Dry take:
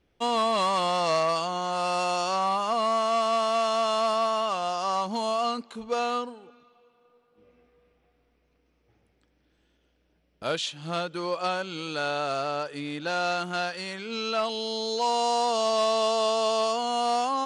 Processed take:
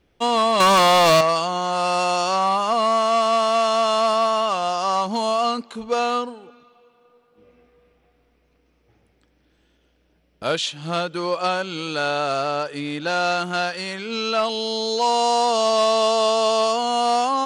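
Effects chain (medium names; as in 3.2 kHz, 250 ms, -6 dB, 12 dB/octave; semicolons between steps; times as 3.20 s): 0.60–1.21 s: waveshaping leveller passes 3; trim +6 dB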